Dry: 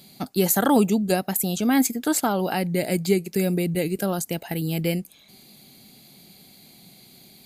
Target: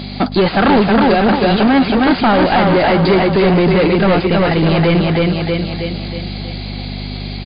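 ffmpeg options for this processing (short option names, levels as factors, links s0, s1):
-filter_complex "[0:a]lowshelf=f=160:g=9,aeval=exprs='val(0)+0.0178*(sin(2*PI*50*n/s)+sin(2*PI*2*50*n/s)/2+sin(2*PI*3*50*n/s)/3+sin(2*PI*4*50*n/s)/4+sin(2*PI*5*50*n/s)/5)':c=same,aecho=1:1:319|638|957|1276|1595|1914:0.562|0.264|0.124|0.0584|0.0274|0.0129,asplit=2[s0][s1];[s1]highpass=f=720:p=1,volume=44.7,asoftclip=type=tanh:threshold=0.708[s2];[s0][s2]amix=inputs=2:normalize=0,lowpass=f=2200:p=1,volume=0.501" -ar 11025 -c:a libmp3lame -b:a 32k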